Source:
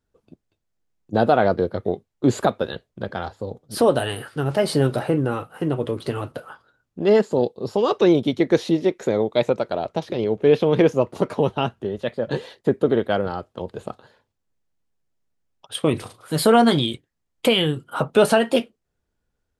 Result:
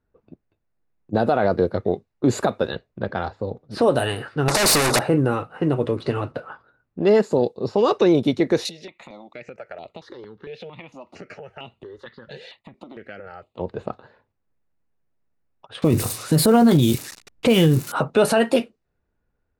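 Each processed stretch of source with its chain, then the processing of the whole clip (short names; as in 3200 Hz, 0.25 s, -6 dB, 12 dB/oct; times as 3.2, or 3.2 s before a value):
4.48–4.99 Butterworth band-stop 2300 Hz, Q 0.62 + overdrive pedal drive 32 dB, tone 4900 Hz, clips at -7 dBFS + spectral compressor 2:1
8.65–13.59 compressor 5:1, threshold -28 dBFS + tilt shelf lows -9.5 dB, about 1300 Hz + step phaser 4.4 Hz 290–5600 Hz
15.82–17.92 switching spikes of -22 dBFS + low shelf 420 Hz +12 dB
whole clip: notch 3200 Hz, Q 8.4; low-pass opened by the level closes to 2300 Hz, open at -15.5 dBFS; limiter -10.5 dBFS; gain +2.5 dB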